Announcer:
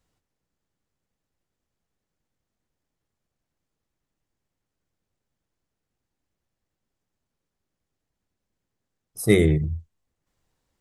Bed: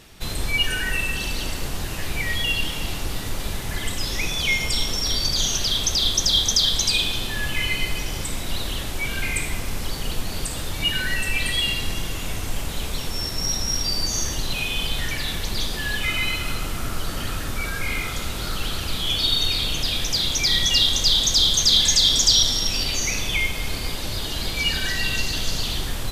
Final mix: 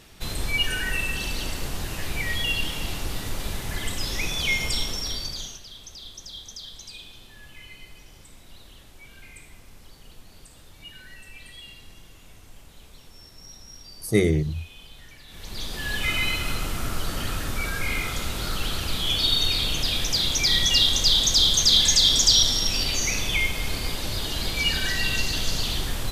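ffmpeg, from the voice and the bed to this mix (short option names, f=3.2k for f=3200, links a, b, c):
-filter_complex "[0:a]adelay=4850,volume=-2.5dB[a];[1:a]volume=17.5dB,afade=t=out:st=4.68:d=0.93:silence=0.11885,afade=t=in:st=15.28:d=0.81:silence=0.1[b];[a][b]amix=inputs=2:normalize=0"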